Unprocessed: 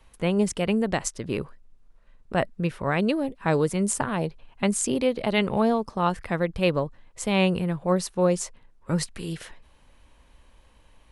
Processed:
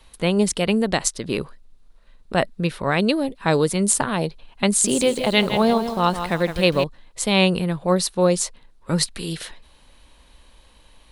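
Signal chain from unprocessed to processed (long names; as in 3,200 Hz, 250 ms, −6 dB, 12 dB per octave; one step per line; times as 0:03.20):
graphic EQ with 15 bands 100 Hz −6 dB, 4,000 Hz +9 dB, 10,000 Hz +6 dB
0:04.68–0:06.84: feedback echo at a low word length 162 ms, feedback 35%, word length 7 bits, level −8.5 dB
level +4 dB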